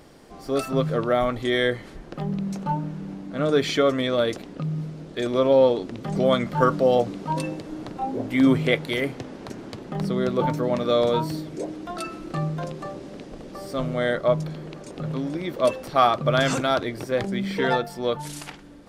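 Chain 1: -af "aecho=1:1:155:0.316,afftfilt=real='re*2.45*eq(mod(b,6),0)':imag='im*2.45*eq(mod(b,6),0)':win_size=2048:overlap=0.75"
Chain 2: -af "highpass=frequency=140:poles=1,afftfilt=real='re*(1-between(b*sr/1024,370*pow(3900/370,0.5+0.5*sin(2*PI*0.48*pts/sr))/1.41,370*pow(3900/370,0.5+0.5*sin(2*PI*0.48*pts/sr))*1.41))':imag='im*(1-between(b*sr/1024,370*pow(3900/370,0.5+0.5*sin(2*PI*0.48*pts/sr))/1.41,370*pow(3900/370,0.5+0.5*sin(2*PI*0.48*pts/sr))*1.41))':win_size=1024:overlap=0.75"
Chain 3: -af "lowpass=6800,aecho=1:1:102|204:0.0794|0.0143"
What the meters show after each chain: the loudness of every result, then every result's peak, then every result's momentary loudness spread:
−23.5, −26.5, −24.0 LKFS; −2.5, −6.0, −6.0 dBFS; 21, 17, 16 LU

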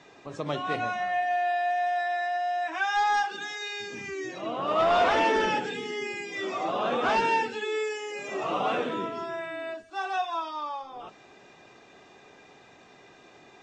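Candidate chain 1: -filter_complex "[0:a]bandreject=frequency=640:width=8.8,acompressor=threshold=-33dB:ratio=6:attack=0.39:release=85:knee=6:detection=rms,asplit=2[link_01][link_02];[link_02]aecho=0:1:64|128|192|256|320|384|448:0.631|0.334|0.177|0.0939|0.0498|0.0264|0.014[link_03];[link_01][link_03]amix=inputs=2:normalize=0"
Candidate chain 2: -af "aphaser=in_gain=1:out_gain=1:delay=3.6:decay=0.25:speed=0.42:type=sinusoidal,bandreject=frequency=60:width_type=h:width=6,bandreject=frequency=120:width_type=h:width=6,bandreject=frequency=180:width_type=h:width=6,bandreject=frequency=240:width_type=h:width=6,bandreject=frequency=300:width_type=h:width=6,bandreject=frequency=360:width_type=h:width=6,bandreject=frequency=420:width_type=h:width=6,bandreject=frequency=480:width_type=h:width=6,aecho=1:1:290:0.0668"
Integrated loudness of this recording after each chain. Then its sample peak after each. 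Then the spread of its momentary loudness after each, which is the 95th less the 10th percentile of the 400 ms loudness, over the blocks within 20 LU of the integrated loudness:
−36.5, −28.0 LKFS; −24.5, −13.0 dBFS; 17, 12 LU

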